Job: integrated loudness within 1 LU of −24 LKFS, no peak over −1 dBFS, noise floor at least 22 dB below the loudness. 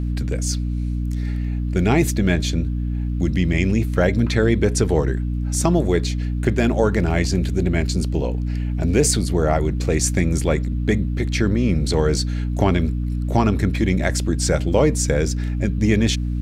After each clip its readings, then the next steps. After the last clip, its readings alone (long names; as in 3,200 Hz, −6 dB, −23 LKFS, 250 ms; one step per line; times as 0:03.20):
mains hum 60 Hz; hum harmonics up to 300 Hz; level of the hum −20 dBFS; integrated loudness −20.5 LKFS; sample peak −2.5 dBFS; target loudness −24.0 LKFS
→ mains-hum notches 60/120/180/240/300 Hz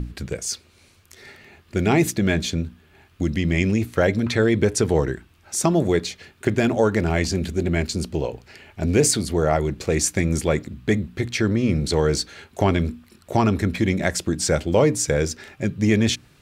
mains hum none found; integrated loudness −22.0 LKFS; sample peak −4.0 dBFS; target loudness −24.0 LKFS
→ level −2 dB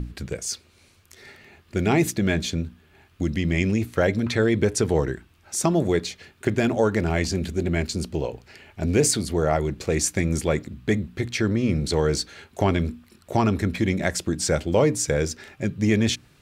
integrated loudness −24.0 LKFS; sample peak −6.0 dBFS; background noise floor −57 dBFS